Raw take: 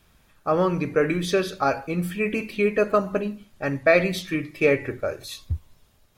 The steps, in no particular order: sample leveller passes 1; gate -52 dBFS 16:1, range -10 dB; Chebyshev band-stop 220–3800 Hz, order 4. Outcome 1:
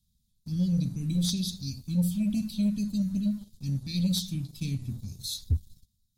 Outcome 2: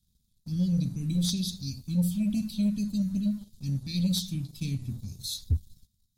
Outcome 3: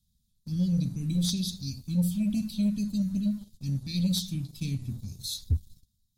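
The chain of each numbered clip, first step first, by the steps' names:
gate > Chebyshev band-stop > sample leveller; Chebyshev band-stop > sample leveller > gate; Chebyshev band-stop > gate > sample leveller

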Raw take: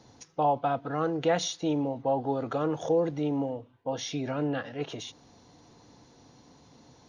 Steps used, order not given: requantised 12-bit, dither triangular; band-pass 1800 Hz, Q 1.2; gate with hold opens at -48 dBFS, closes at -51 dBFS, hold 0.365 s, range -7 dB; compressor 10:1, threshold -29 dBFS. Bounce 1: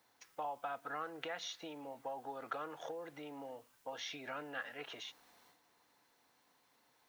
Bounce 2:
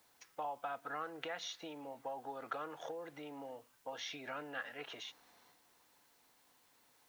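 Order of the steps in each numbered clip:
compressor > band-pass > requantised > gate with hold; compressor > band-pass > gate with hold > requantised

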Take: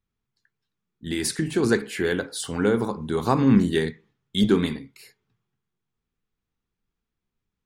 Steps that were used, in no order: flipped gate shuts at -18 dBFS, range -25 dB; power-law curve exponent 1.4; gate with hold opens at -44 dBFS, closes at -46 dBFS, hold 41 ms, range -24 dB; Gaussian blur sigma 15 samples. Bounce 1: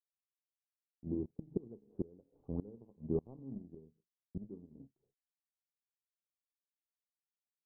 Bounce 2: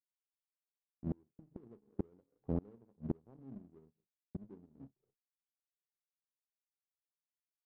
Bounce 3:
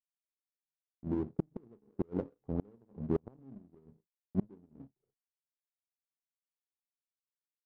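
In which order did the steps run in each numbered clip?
gate with hold > power-law curve > flipped gate > Gaussian blur; gate with hold > flipped gate > Gaussian blur > power-law curve; gate with hold > Gaussian blur > flipped gate > power-law curve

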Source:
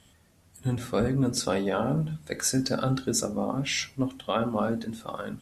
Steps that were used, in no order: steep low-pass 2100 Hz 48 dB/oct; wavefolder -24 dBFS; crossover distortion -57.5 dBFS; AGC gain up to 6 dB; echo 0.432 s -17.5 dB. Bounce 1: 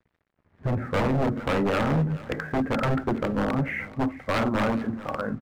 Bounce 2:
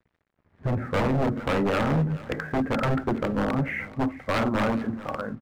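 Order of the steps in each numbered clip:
steep low-pass > wavefolder > echo > AGC > crossover distortion; steep low-pass > wavefolder > AGC > echo > crossover distortion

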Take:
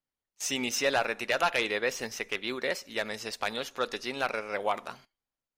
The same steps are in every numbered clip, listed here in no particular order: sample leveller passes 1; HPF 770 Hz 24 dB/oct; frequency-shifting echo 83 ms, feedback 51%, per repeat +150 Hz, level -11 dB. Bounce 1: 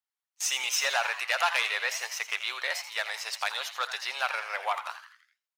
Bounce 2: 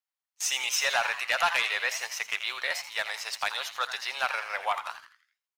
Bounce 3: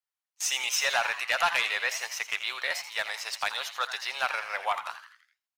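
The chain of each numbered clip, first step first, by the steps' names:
sample leveller > HPF > frequency-shifting echo; HPF > frequency-shifting echo > sample leveller; HPF > sample leveller > frequency-shifting echo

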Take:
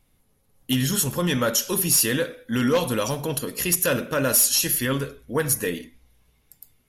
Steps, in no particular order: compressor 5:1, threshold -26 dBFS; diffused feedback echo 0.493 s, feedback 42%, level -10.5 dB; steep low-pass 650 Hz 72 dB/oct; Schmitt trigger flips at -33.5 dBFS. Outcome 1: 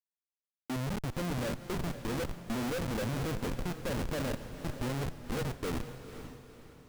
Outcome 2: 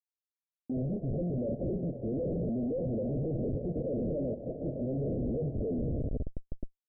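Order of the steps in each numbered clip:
compressor > steep low-pass > Schmitt trigger > diffused feedback echo; compressor > diffused feedback echo > Schmitt trigger > steep low-pass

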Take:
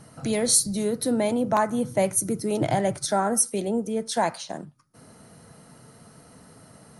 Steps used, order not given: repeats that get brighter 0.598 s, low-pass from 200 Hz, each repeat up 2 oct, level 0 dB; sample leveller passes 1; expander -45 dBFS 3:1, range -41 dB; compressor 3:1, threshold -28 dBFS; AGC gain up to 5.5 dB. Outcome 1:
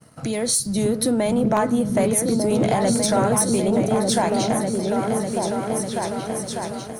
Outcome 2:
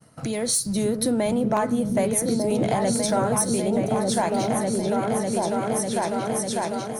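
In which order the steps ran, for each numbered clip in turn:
compressor > repeats that get brighter > AGC > sample leveller > expander; expander > sample leveller > repeats that get brighter > compressor > AGC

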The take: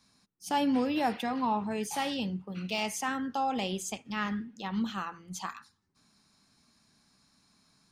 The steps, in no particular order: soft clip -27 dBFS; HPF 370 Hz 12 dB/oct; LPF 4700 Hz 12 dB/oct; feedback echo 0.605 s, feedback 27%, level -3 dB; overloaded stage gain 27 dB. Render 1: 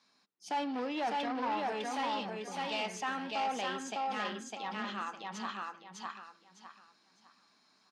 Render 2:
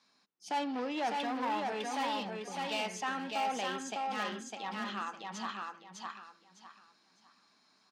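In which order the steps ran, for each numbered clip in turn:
feedback echo > soft clip > HPF > overloaded stage > LPF; LPF > soft clip > feedback echo > overloaded stage > HPF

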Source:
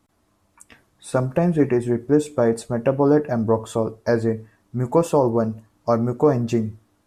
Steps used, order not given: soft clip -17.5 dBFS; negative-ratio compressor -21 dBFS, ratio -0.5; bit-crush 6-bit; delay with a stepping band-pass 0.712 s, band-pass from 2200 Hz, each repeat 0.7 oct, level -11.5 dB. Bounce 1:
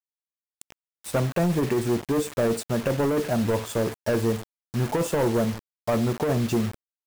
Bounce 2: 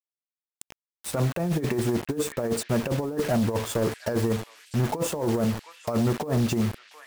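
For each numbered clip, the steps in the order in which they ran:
delay with a stepping band-pass > soft clip > bit-crush > negative-ratio compressor; bit-crush > delay with a stepping band-pass > negative-ratio compressor > soft clip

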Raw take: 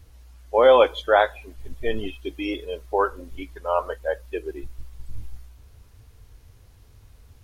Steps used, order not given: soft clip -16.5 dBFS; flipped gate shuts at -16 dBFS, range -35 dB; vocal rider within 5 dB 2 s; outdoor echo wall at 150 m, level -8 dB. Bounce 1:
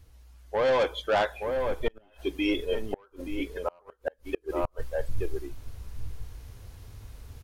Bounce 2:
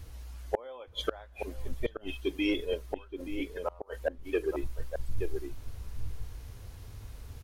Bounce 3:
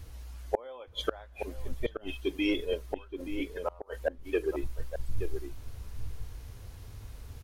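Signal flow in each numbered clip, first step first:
soft clip > outdoor echo > vocal rider > flipped gate; flipped gate > outdoor echo > vocal rider > soft clip; flipped gate > soft clip > vocal rider > outdoor echo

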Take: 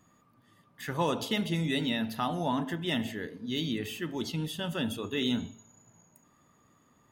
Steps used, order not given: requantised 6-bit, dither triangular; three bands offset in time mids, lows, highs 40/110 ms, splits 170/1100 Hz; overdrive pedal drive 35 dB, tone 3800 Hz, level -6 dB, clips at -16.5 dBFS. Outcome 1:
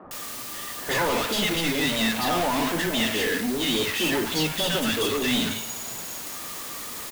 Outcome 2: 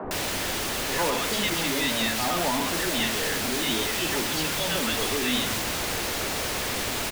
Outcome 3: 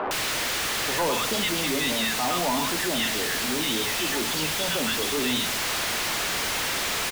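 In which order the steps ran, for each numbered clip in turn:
overdrive pedal > requantised > three bands offset in time; requantised > overdrive pedal > three bands offset in time; requantised > three bands offset in time > overdrive pedal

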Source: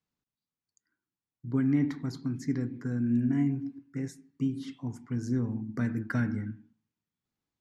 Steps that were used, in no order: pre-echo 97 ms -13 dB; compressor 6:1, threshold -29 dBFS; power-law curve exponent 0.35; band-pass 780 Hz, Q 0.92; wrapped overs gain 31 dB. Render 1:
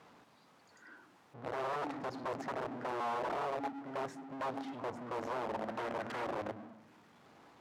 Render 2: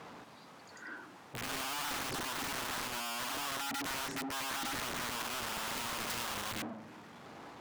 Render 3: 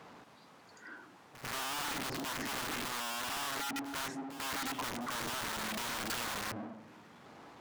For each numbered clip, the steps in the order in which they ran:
compressor > pre-echo > wrapped overs > power-law curve > band-pass; pre-echo > power-law curve > band-pass > compressor > wrapped overs; compressor > power-law curve > band-pass > wrapped overs > pre-echo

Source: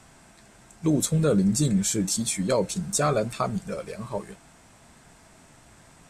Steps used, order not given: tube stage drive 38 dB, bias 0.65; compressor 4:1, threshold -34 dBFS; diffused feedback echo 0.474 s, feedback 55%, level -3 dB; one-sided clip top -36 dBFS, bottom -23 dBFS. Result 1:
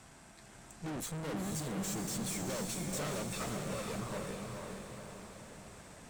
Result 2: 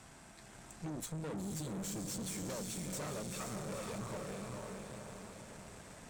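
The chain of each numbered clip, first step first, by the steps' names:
one-sided clip > tube stage > compressor > diffused feedback echo; compressor > one-sided clip > diffused feedback echo > tube stage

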